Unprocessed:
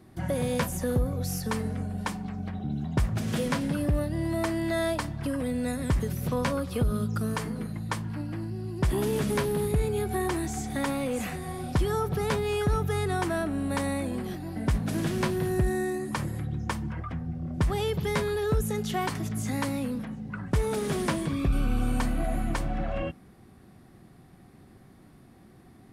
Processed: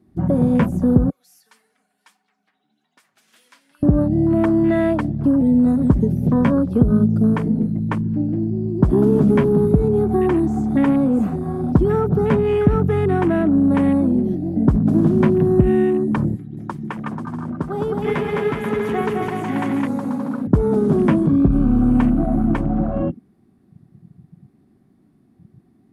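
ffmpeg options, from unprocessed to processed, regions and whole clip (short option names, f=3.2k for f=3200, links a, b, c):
-filter_complex "[0:a]asettb=1/sr,asplit=3[a][b][c];[a]atrim=end=1.104[d];[b]atrim=start=1.1:end=3.83,asetpts=PTS-STARTPTS,afade=t=in:d=0.004:c=qsin,afade=t=out:st=2.726:d=0.004:c=qsin,highpass=1.5k,flanger=delay=2.1:depth=5.5:regen=44:speed=1.7:shape=sinusoidal[e];[c]atrim=start=3.826[f];[d][e]acrossfade=d=0.004:c1=hsin:c2=qsin[g];[g][f]acrossfade=d=0.004:c1=qsin:c2=hsin,asettb=1/sr,asplit=3[h][i][j];[h]atrim=end=16.364[k];[i]atrim=start=16.36:end=20.47,asetpts=PTS-STARTPTS,afade=t=in:d=0.004:c=qsin,afade=t=out:st=4.106:d=0.004:c=qsin,highpass=f=660:p=1,aecho=1:1:210|367.5|485.6|574.2|640.7|690.5|727.9|755.9:0.794|0.631|0.501|0.398|0.316|0.251|0.2|0.158,atrim=end_sample=181251[l];[j]atrim=start=20.466[m];[k][l]acrossfade=d=0.004:c1=hsin:c2=qsin[n];[n][m]acrossfade=d=0.004:c1=qsin:c2=hsin,afwtdn=0.0158,equalizer=f=240:w=0.68:g=13,bandreject=f=510:w=12,volume=3.5dB"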